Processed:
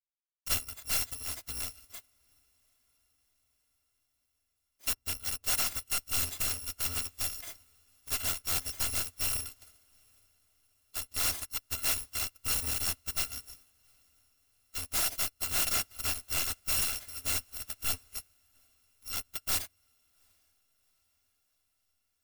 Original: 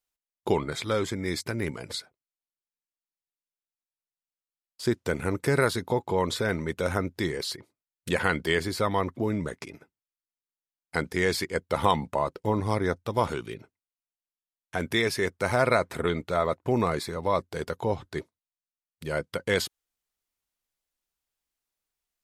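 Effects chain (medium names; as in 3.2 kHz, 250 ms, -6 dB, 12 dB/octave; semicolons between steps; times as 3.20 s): bit-reversed sample order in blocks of 256 samples; bass shelf 65 Hz +6 dB; saturation -20.5 dBFS, distortion -12 dB; on a send at -13 dB: reverberation RT60 0.55 s, pre-delay 4 ms; on the sum: integer overflow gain 23 dB; echo that smears into a reverb 779 ms, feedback 62%, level -13 dB; upward expansion 2.5:1, over -43 dBFS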